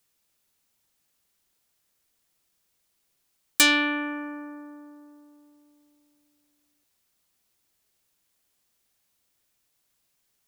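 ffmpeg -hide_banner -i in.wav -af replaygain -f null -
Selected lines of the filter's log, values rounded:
track_gain = +16.1 dB
track_peak = 0.280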